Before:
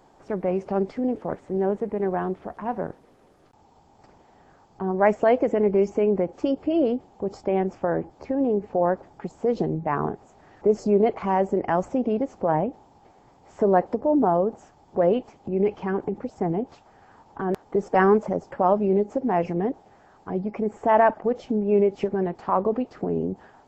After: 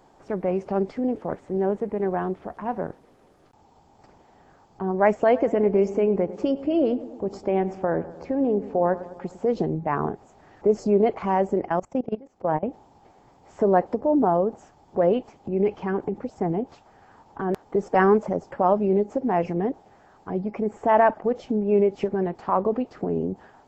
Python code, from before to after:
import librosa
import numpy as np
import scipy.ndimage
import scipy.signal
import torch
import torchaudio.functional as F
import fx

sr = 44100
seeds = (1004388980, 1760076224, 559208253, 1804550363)

y = fx.echo_filtered(x, sr, ms=102, feedback_pct=62, hz=2000.0, wet_db=-15.0, at=(5.17, 9.46))
y = fx.level_steps(y, sr, step_db=22, at=(11.68, 12.63))